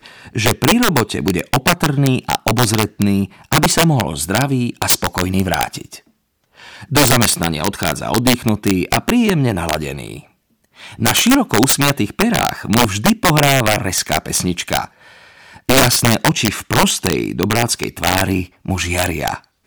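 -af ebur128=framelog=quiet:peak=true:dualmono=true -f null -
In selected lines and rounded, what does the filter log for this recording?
Integrated loudness:
  I:         -12.4 LUFS
  Threshold: -23.0 LUFS
Loudness range:
  LRA:         2.9 LU
  Threshold: -32.9 LUFS
  LRA low:   -14.3 LUFS
  LRA high:  -11.4 LUFS
True peak:
  Peak:        0.1 dBFS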